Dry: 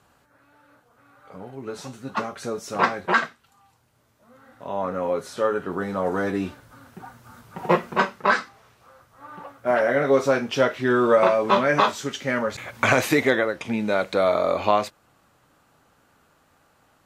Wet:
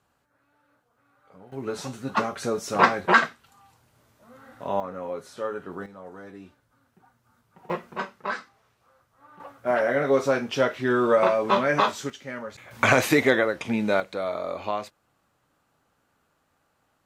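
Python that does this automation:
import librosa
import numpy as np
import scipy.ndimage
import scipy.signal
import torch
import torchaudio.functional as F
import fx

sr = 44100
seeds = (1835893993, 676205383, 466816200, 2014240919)

y = fx.gain(x, sr, db=fx.steps((0.0, -10.0), (1.52, 2.5), (4.8, -8.0), (5.86, -18.0), (7.7, -10.5), (9.4, -2.5), (12.1, -11.0), (12.71, 0.0), (14.0, -9.0)))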